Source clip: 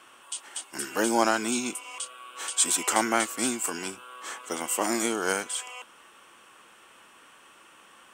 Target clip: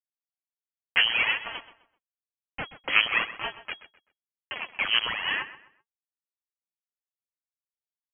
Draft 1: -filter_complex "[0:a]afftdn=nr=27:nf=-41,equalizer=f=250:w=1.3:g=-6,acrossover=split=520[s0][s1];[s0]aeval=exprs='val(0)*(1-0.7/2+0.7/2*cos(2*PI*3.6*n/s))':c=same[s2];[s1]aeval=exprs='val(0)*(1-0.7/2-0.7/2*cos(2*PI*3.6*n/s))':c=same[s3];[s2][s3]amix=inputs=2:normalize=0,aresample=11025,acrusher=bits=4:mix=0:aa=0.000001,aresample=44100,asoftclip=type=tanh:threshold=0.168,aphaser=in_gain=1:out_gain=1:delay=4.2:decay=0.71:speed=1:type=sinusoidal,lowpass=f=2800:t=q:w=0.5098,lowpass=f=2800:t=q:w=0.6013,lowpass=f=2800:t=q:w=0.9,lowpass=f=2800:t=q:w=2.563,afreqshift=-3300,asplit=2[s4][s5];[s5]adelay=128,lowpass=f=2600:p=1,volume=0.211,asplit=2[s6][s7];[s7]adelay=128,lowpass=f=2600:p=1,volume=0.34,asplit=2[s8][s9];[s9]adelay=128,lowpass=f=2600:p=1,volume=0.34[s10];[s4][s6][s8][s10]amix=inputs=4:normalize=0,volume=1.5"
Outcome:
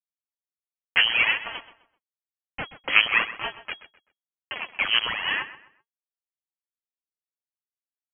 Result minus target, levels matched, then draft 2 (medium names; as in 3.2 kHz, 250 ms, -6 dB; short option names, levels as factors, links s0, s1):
saturation: distortion -8 dB
-filter_complex "[0:a]afftdn=nr=27:nf=-41,equalizer=f=250:w=1.3:g=-6,acrossover=split=520[s0][s1];[s0]aeval=exprs='val(0)*(1-0.7/2+0.7/2*cos(2*PI*3.6*n/s))':c=same[s2];[s1]aeval=exprs='val(0)*(1-0.7/2-0.7/2*cos(2*PI*3.6*n/s))':c=same[s3];[s2][s3]amix=inputs=2:normalize=0,aresample=11025,acrusher=bits=4:mix=0:aa=0.000001,aresample=44100,asoftclip=type=tanh:threshold=0.0668,aphaser=in_gain=1:out_gain=1:delay=4.2:decay=0.71:speed=1:type=sinusoidal,lowpass=f=2800:t=q:w=0.5098,lowpass=f=2800:t=q:w=0.6013,lowpass=f=2800:t=q:w=0.9,lowpass=f=2800:t=q:w=2.563,afreqshift=-3300,asplit=2[s4][s5];[s5]adelay=128,lowpass=f=2600:p=1,volume=0.211,asplit=2[s6][s7];[s7]adelay=128,lowpass=f=2600:p=1,volume=0.34,asplit=2[s8][s9];[s9]adelay=128,lowpass=f=2600:p=1,volume=0.34[s10];[s4][s6][s8][s10]amix=inputs=4:normalize=0,volume=1.5"